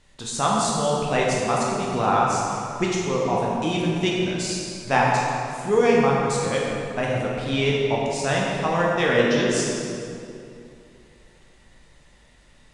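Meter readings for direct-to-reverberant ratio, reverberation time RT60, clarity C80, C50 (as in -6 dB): -4.0 dB, 2.6 s, 0.5 dB, -1.5 dB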